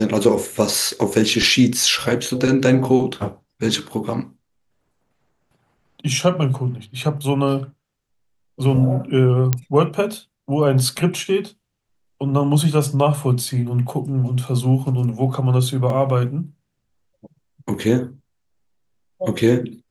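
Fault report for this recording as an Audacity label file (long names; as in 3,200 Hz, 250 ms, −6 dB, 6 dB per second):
9.530000	9.530000	click −4 dBFS
15.900000	15.900000	drop-out 2 ms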